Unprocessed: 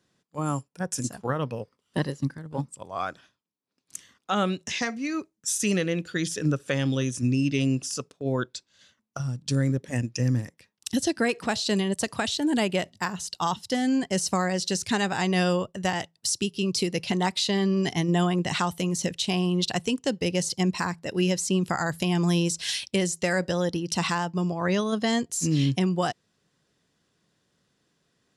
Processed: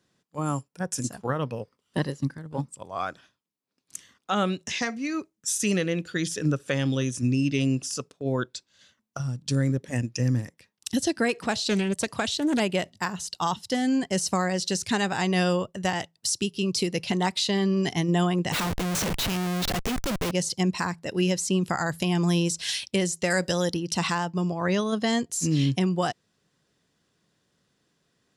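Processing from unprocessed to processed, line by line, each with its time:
11.52–12.60 s: loudspeaker Doppler distortion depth 0.16 ms
18.52–20.31 s: Schmitt trigger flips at -37 dBFS
23.30–23.74 s: treble shelf 3.9 kHz +11 dB

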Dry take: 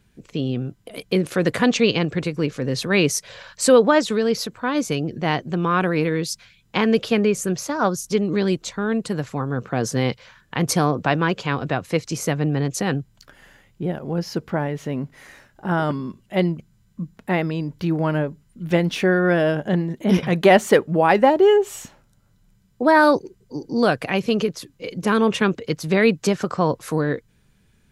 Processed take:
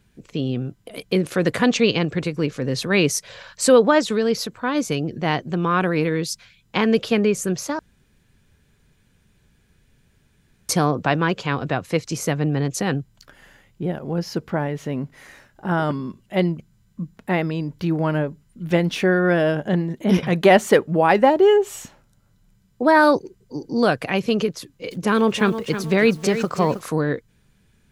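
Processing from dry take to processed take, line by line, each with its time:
7.79–10.69 s: room tone
24.59–26.88 s: bit-crushed delay 319 ms, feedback 35%, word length 7-bit, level -10 dB

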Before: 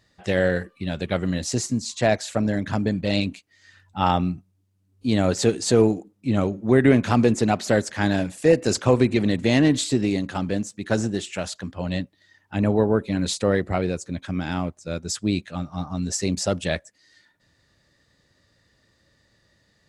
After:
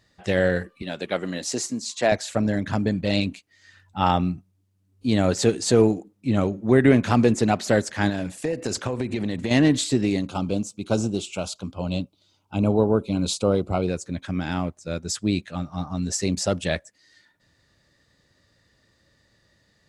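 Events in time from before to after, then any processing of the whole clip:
0.82–2.12 s: high-pass 270 Hz
8.09–9.51 s: compression 10:1, threshold -21 dBFS
10.27–13.88 s: Butterworth band-stop 1.8 kHz, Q 1.9

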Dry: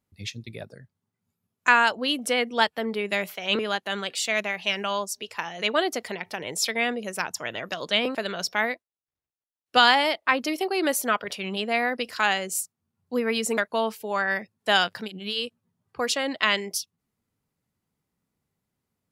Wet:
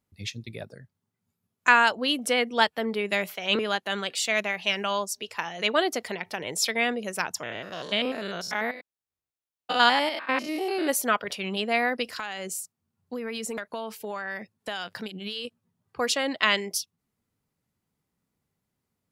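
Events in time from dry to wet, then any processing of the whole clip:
7.43–10.90 s: spectrogram pixelated in time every 100 ms
12.05–15.45 s: compression 8:1, threshold -29 dBFS

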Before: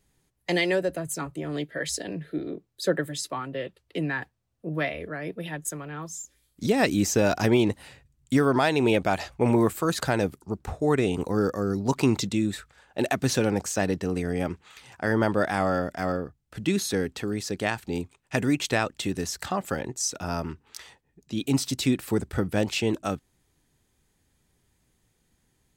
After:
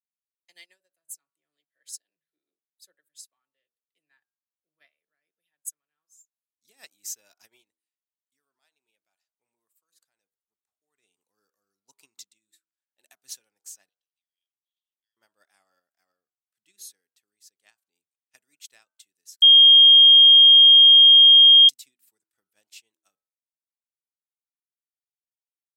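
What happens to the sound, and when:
7.54–11.12 s: dip -8 dB, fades 0.22 s
13.89–15.17 s: ladder band-pass 3.5 kHz, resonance 75%
19.42–21.69 s: bleep 3.23 kHz -9.5 dBFS
whole clip: differentiator; de-hum 80.84 Hz, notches 20; upward expansion 2.5:1, over -47 dBFS; trim +8.5 dB

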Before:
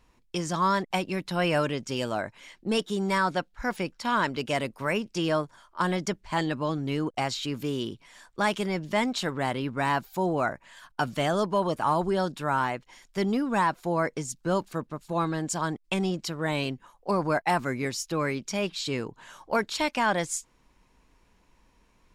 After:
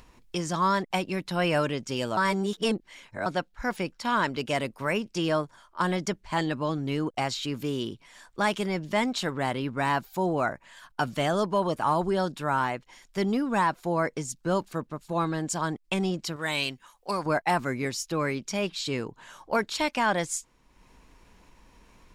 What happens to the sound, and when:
2.17–3.26 s: reverse
16.36–17.26 s: tilt shelf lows -7.5 dB, about 1.2 kHz
whole clip: upward compressor, threshold -46 dBFS

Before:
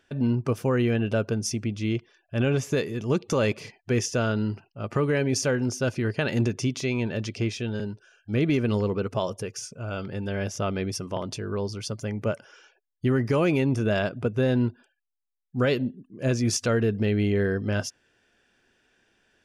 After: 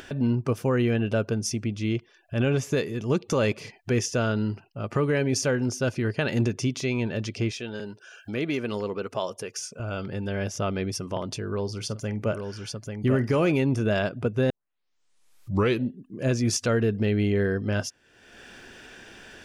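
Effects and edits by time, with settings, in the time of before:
7.51–9.80 s: high-pass 420 Hz 6 dB/octave
11.49–13.52 s: multi-tap echo 47/841 ms -16.5/-6 dB
14.50 s: tape start 1.36 s
whole clip: upward compressor, threshold -29 dBFS

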